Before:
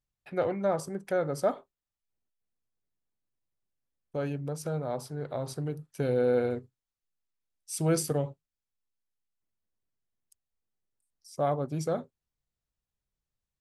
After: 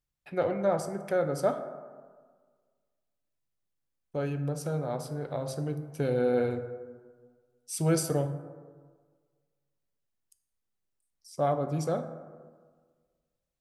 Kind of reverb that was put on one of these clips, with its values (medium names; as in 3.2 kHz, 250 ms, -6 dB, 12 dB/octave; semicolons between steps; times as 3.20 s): plate-style reverb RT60 1.6 s, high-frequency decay 0.35×, DRR 8 dB